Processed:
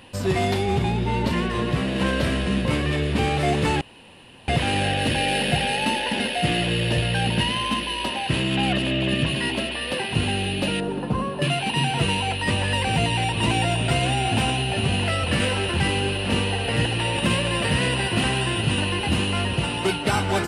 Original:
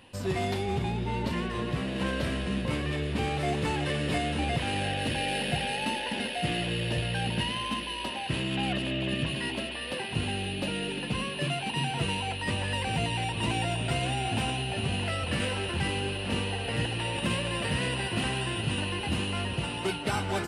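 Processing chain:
0:03.81–0:04.48: fill with room tone
0:10.80–0:11.42: high shelf with overshoot 1,600 Hz −12 dB, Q 1.5
level +7.5 dB

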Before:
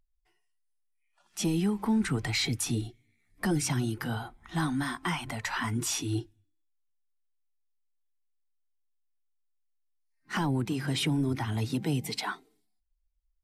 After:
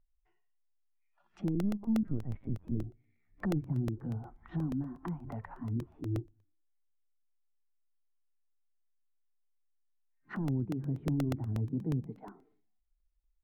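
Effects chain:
treble cut that deepens with the level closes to 370 Hz, closed at −29.5 dBFS
low-pass filter 1,800 Hz 12 dB per octave
low-shelf EQ 88 Hz +4 dB
0:01.55–0:02.84: linear-prediction vocoder at 8 kHz pitch kept
regular buffer underruns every 0.12 s, samples 64, repeat, from 0:00.76
level −3.5 dB

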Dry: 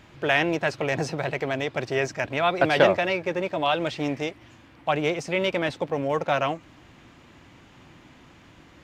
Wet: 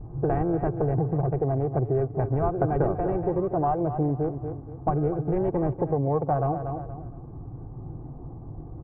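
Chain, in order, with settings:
adaptive Wiener filter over 25 samples
in parallel at −6 dB: sample-and-hold swept by an LFO 31×, swing 100% 0.45 Hz
on the sum: parametric band 76 Hz −13.5 dB 0.67 octaves
on a send: repeating echo 238 ms, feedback 29%, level −13.5 dB
on the sum: pitch vibrato 0.32 Hz 20 cents
low-pass filter 1,000 Hz 24 dB per octave
low shelf with overshoot 190 Hz +10 dB, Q 1.5
comb filter 2.6 ms, depth 53%
downward compressor 4 to 1, threshold −29 dBFS, peak gain reduction 14 dB
level +6.5 dB

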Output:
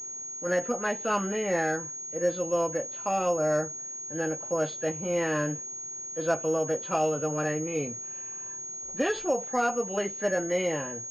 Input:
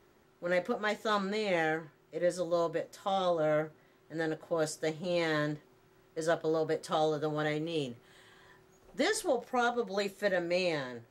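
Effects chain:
hearing-aid frequency compression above 1,500 Hz 1.5 to 1
switching amplifier with a slow clock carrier 6,600 Hz
level +3.5 dB

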